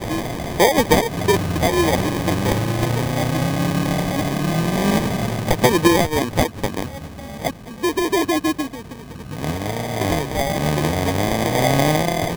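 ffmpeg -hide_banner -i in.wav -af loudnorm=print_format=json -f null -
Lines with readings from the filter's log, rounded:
"input_i" : "-20.0",
"input_tp" : "-2.0",
"input_lra" : "3.5",
"input_thresh" : "-30.2",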